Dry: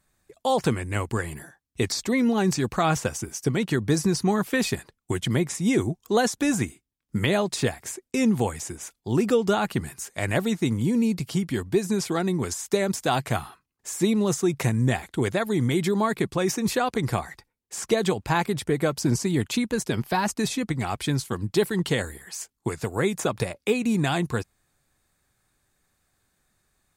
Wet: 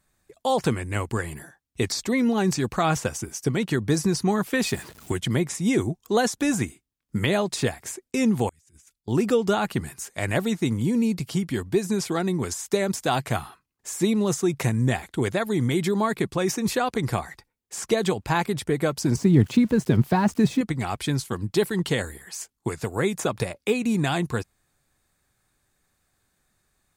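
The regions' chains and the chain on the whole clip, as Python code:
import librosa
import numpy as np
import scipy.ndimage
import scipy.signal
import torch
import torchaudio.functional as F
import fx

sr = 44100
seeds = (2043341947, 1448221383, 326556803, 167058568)

y = fx.chain(x, sr, fx.zero_step(step_db=-39.0),
    fx.highpass(hz=75.0, slope=12), at=(4.66, 5.12))
y = fx.chain(y, sr, fx.tone_stack(knobs='6-0-2'),
    fx.over_compress(threshold_db=-56.0, ratio=-0.5), at=(8.49, 9.08))
y = fx.chain(y, sr, fx.crossing_spikes(level_db=-29.5),
    fx.highpass(hz=110.0, slope=12),
    fx.riaa(side='playback'), at=(19.16, 20.61))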